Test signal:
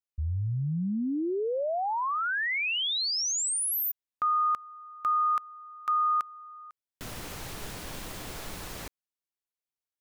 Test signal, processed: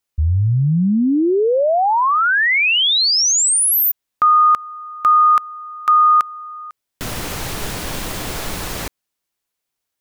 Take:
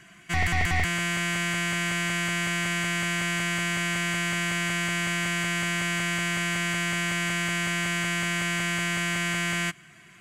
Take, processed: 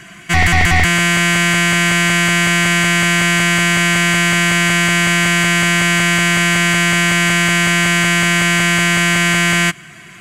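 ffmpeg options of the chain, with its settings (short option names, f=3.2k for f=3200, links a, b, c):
-af "apsyclip=19.5dB,volume=-5.5dB"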